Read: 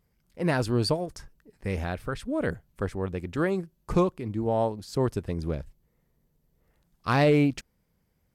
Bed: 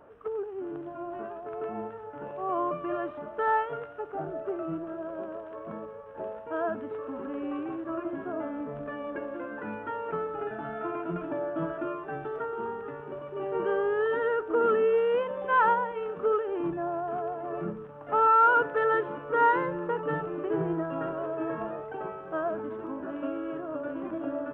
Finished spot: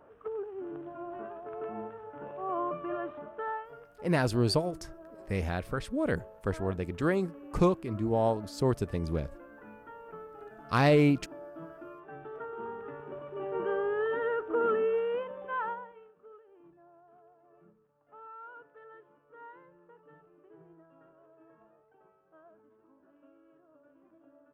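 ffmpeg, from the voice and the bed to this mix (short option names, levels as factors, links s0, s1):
-filter_complex "[0:a]adelay=3650,volume=0.841[s0];[1:a]volume=2.11,afade=t=out:st=3.15:d=0.46:silence=0.316228,afade=t=in:st=11.9:d=1.08:silence=0.316228,afade=t=out:st=14.72:d=1.41:silence=0.0630957[s1];[s0][s1]amix=inputs=2:normalize=0"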